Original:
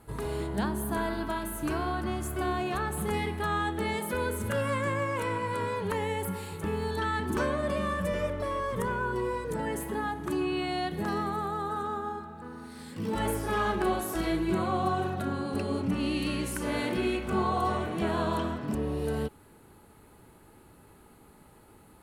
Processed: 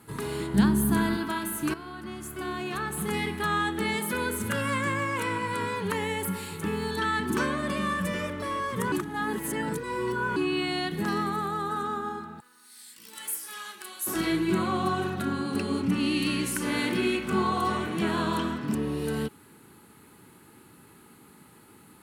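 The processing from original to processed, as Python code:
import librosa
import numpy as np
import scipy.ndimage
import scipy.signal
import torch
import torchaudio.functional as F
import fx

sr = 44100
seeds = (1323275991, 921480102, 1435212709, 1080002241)

y = fx.bass_treble(x, sr, bass_db=11, treble_db=2, at=(0.54, 1.17))
y = fx.differentiator(y, sr, at=(12.4, 14.07))
y = fx.edit(y, sr, fx.fade_in_from(start_s=1.74, length_s=1.67, floor_db=-13.0),
    fx.reverse_span(start_s=8.92, length_s=1.44), tone=tone)
y = scipy.signal.sosfilt(scipy.signal.butter(2, 150.0, 'highpass', fs=sr, output='sos'), y)
y = fx.peak_eq(y, sr, hz=620.0, db=-11.0, octaves=1.1)
y = y * 10.0 ** (6.0 / 20.0)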